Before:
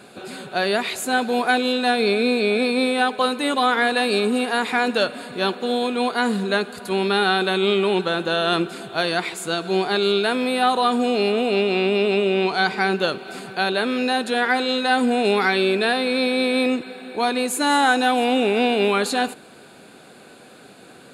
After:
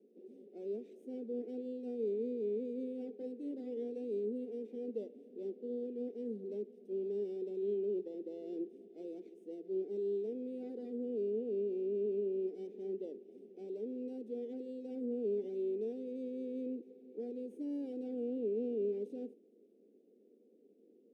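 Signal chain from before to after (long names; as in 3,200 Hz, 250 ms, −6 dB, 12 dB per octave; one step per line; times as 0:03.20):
lower of the sound and its delayed copy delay 0.35 ms
elliptic band-pass filter 210–460 Hz, stop band 50 dB
first difference
level +11.5 dB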